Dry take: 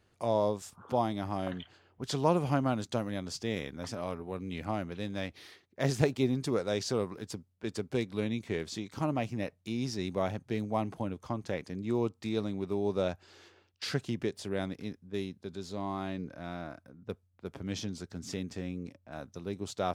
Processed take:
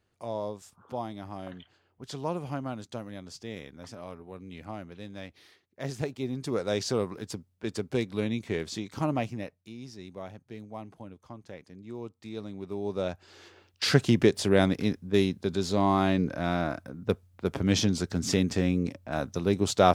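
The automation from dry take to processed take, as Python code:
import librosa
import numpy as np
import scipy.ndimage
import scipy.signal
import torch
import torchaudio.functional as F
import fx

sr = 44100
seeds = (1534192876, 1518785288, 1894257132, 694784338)

y = fx.gain(x, sr, db=fx.line((6.19, -5.5), (6.69, 3.0), (9.2, 3.0), (9.75, -9.5), (11.97, -9.5), (13.11, 0.5), (14.04, 12.0)))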